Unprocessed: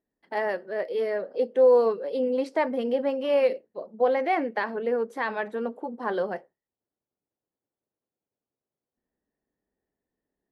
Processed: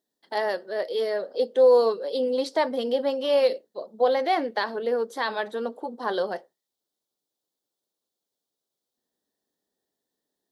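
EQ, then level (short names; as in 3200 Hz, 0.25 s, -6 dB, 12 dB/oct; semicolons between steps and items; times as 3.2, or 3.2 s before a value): HPF 360 Hz 6 dB/oct; resonant high shelf 3000 Hz +6 dB, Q 3; +3.0 dB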